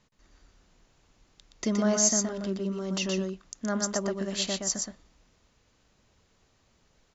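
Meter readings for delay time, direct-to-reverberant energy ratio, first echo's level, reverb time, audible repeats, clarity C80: 121 ms, no reverb audible, −4.0 dB, no reverb audible, 1, no reverb audible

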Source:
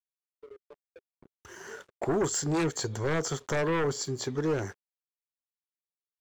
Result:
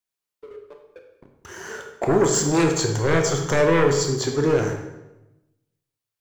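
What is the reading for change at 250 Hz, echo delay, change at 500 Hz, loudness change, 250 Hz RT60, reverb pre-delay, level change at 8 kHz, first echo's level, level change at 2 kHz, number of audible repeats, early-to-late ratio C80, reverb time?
+9.0 dB, no echo audible, +10.5 dB, +9.5 dB, 1.1 s, 20 ms, +8.5 dB, no echo audible, +9.0 dB, no echo audible, 8.0 dB, 1.0 s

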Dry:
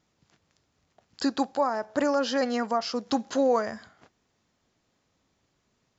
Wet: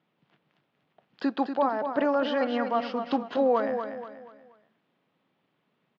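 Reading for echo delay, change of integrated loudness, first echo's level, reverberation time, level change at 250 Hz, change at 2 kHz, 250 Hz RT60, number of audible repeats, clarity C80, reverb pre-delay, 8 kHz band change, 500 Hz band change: 240 ms, 0.0 dB, −7.5 dB, no reverb audible, −0.5 dB, 0.0 dB, no reverb audible, 4, no reverb audible, no reverb audible, can't be measured, +0.5 dB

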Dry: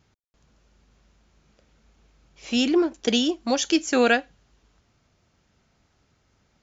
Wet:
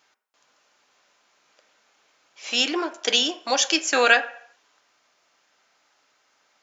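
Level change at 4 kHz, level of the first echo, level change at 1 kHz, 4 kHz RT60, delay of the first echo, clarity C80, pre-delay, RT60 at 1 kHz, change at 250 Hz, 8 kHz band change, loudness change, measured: +5.5 dB, no echo audible, +3.5 dB, 0.60 s, no echo audible, 18.0 dB, 3 ms, 0.65 s, −9.0 dB, can't be measured, +1.5 dB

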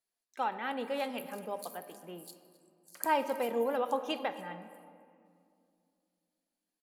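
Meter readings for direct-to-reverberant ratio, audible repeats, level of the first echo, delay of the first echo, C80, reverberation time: 9.5 dB, 1, −19.5 dB, 261 ms, 12.0 dB, 2.4 s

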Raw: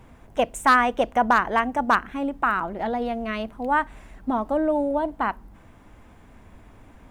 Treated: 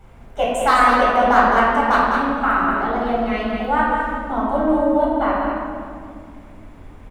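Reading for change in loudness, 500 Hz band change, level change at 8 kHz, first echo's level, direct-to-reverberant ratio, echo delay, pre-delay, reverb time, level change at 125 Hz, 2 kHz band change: +5.5 dB, +6.0 dB, can't be measured, −5.0 dB, −6.5 dB, 204 ms, 3 ms, 2.2 s, +7.5 dB, +5.0 dB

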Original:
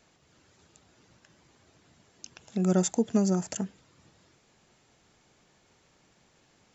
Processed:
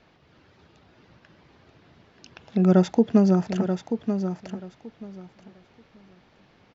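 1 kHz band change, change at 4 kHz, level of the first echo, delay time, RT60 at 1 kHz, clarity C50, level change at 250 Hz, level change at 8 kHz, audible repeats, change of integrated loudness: +7.0 dB, +1.5 dB, −8.0 dB, 933 ms, no reverb audible, no reverb audible, +7.5 dB, can't be measured, 2, +5.5 dB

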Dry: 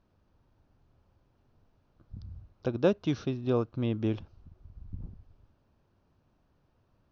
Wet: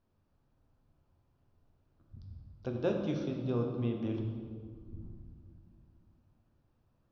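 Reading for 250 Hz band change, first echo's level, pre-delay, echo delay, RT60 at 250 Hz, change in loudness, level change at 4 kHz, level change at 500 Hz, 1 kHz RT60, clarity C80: −3.5 dB, no echo audible, 6 ms, no echo audible, 3.3 s, −5.0 dB, −6.5 dB, −5.0 dB, 1.9 s, 5.5 dB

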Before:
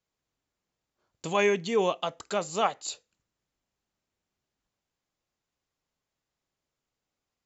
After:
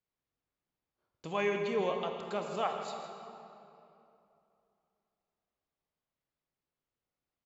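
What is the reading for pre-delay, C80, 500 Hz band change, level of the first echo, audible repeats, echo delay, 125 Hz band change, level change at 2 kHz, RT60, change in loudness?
26 ms, 5.0 dB, −5.5 dB, −13.5 dB, 1, 161 ms, −5.0 dB, −7.0 dB, 2.9 s, −6.5 dB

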